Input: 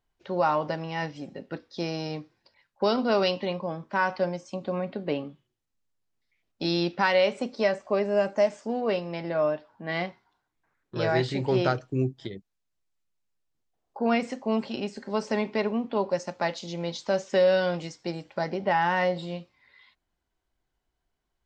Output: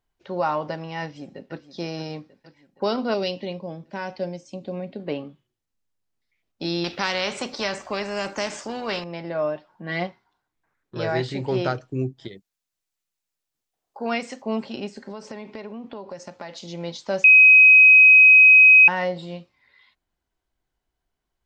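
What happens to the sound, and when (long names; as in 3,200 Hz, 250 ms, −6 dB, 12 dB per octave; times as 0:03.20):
0:01.03–0:01.67: delay throw 470 ms, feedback 65%, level −13 dB
0:03.14–0:05.00: parametric band 1,200 Hz −13 dB 1 octave
0:06.84–0:09.04: every bin compressed towards the loudest bin 2 to 1
0:09.55–0:10.07: comb filter 5.6 ms
0:12.28–0:14.42: spectral tilt +2 dB per octave
0:15.11–0:16.67: downward compressor, threshold −32 dBFS
0:17.24–0:18.88: beep over 2,530 Hz −7.5 dBFS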